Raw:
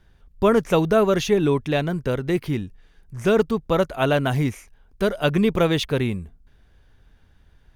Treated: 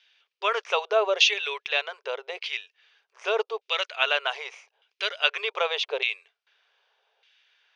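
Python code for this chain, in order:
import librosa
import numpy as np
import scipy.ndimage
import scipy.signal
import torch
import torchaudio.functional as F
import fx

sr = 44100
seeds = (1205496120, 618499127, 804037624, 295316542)

y = fx.filter_lfo_bandpass(x, sr, shape='saw_down', hz=0.83, low_hz=680.0, high_hz=2500.0, q=1.4)
y = fx.brickwall_bandpass(y, sr, low_hz=390.0, high_hz=10000.0)
y = fx.band_shelf(y, sr, hz=3900.0, db=14.5, octaves=1.7)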